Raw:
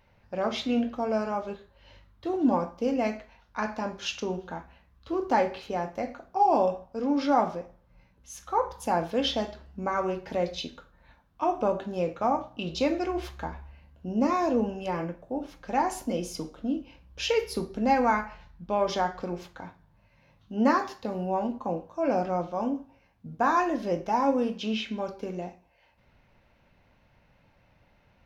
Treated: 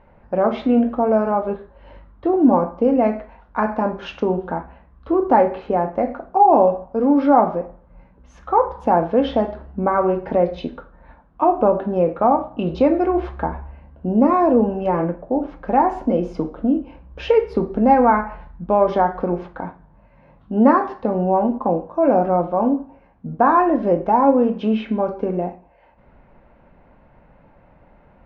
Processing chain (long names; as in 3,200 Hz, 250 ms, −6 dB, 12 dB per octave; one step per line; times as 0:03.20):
low-pass filter 1,200 Hz 12 dB per octave
parametric band 100 Hz −9 dB 0.84 octaves
in parallel at −1 dB: downward compressor, threshold −32 dBFS, peak gain reduction 13 dB
on the sum: level +8.5 dB